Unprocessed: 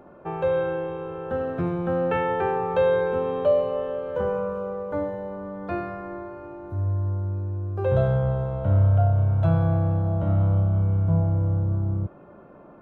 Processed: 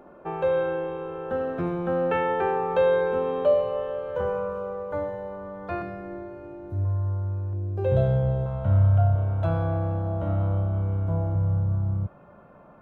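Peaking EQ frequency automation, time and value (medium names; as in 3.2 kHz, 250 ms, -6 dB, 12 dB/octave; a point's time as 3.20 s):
peaking EQ -10 dB 0.85 oct
110 Hz
from 3.54 s 250 Hz
from 5.82 s 1.1 kHz
from 6.85 s 260 Hz
from 7.53 s 1.2 kHz
from 8.46 s 390 Hz
from 9.15 s 140 Hz
from 11.35 s 340 Hz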